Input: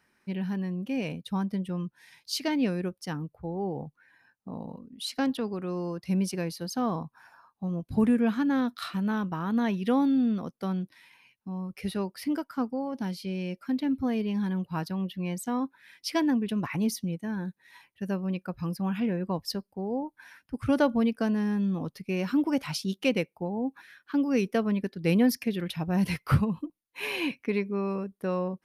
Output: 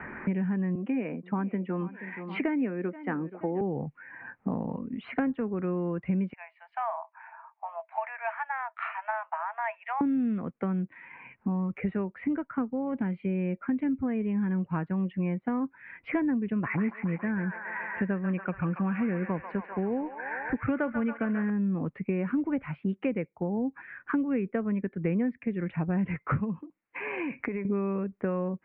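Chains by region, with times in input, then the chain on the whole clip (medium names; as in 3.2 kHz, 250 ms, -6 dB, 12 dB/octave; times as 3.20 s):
0.75–3.61 s: high-pass 220 Hz 24 dB/octave + band-stop 550 Hz, Q 17 + feedback delay 478 ms, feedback 31%, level -22.5 dB
6.33–10.01 s: rippled Chebyshev high-pass 630 Hz, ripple 9 dB + three bands expanded up and down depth 70%
16.53–21.50 s: peaking EQ 2 kHz +6 dB 1.7 oct + feedback echo behind a band-pass 139 ms, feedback 64%, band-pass 1.5 kHz, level -5.5 dB
26.59–27.65 s: treble shelf 2.2 kHz +9 dB + compression 10:1, threshold -41 dBFS
whole clip: steep low-pass 2.3 kHz 48 dB/octave; dynamic bell 840 Hz, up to -5 dB, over -43 dBFS, Q 1.3; three bands compressed up and down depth 100%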